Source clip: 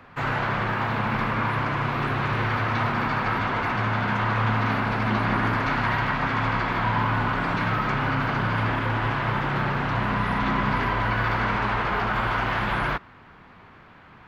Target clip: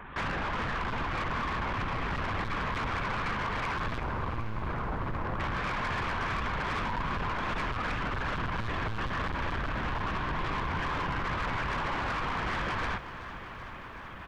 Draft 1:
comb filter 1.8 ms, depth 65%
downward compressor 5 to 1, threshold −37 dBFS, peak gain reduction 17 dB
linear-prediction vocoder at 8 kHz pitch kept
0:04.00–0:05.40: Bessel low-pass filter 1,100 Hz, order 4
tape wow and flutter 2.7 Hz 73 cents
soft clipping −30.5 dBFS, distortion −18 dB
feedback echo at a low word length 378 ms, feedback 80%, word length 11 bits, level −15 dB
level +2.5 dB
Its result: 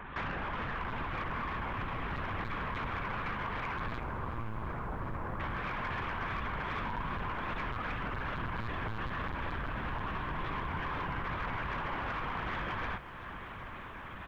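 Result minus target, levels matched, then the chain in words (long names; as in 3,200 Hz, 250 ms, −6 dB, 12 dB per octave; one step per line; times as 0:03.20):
downward compressor: peak gain reduction +7 dB
comb filter 1.8 ms, depth 65%
downward compressor 5 to 1, threshold −28 dBFS, peak gain reduction 10 dB
linear-prediction vocoder at 8 kHz pitch kept
0:04.00–0:05.40: Bessel low-pass filter 1,100 Hz, order 4
tape wow and flutter 2.7 Hz 73 cents
soft clipping −30.5 dBFS, distortion −11 dB
feedback echo at a low word length 378 ms, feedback 80%, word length 11 bits, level −15 dB
level +2.5 dB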